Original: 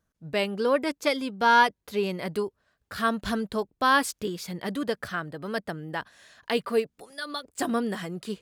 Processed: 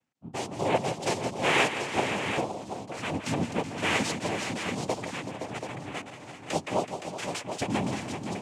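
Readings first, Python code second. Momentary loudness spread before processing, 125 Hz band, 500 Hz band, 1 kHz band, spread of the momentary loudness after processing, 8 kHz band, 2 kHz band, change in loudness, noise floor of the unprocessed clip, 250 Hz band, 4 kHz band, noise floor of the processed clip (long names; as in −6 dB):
13 LU, +4.5 dB, −3.0 dB, −5.0 dB, 11 LU, +3.5 dB, −2.5 dB, −3.0 dB, −80 dBFS, −2.0 dB, −0.5 dB, −47 dBFS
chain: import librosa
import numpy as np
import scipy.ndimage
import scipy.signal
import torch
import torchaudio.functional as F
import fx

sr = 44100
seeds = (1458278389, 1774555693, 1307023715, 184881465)

p1 = fx.noise_vocoder(x, sr, seeds[0], bands=4)
p2 = fx.tremolo_random(p1, sr, seeds[1], hz=3.5, depth_pct=55)
p3 = fx.dynamic_eq(p2, sr, hz=1400.0, q=1.5, threshold_db=-42.0, ratio=4.0, max_db=-6)
y = p3 + fx.echo_multitap(p3, sr, ms=(167, 376, 517, 732), db=(-10.5, -12.0, -9.0, -8.5), dry=0)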